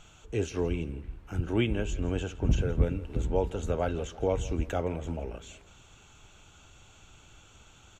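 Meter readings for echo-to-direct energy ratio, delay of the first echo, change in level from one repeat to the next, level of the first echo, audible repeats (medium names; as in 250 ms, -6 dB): -18.0 dB, 167 ms, -5.5 dB, -19.0 dB, 2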